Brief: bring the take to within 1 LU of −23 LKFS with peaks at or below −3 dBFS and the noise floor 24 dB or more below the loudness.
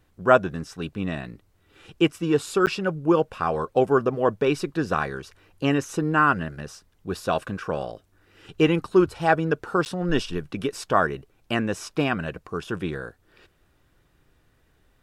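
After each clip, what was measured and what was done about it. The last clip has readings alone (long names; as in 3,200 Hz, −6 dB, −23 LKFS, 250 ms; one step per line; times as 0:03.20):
number of dropouts 2; longest dropout 9.3 ms; integrated loudness −24.5 LKFS; sample peak −2.5 dBFS; target loudness −23.0 LKFS
→ repair the gap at 0:02.66/0:09.85, 9.3 ms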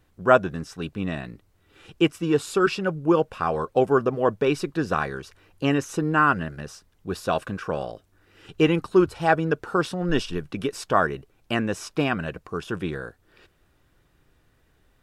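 number of dropouts 0; integrated loudness −24.5 LKFS; sample peak −2.5 dBFS; target loudness −23.0 LKFS
→ level +1.5 dB
brickwall limiter −3 dBFS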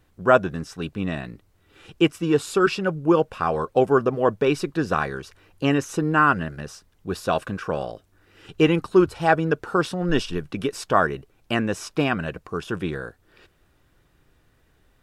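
integrated loudness −23.0 LKFS; sample peak −3.0 dBFS; background noise floor −62 dBFS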